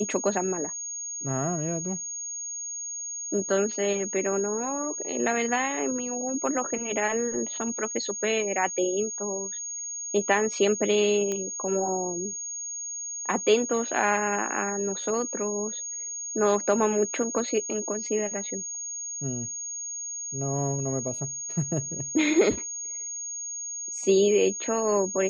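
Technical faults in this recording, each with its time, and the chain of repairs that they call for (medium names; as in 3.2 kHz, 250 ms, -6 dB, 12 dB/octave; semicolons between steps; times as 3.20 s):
whine 6.6 kHz -32 dBFS
11.32 s: pop -17 dBFS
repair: de-click; band-stop 6.6 kHz, Q 30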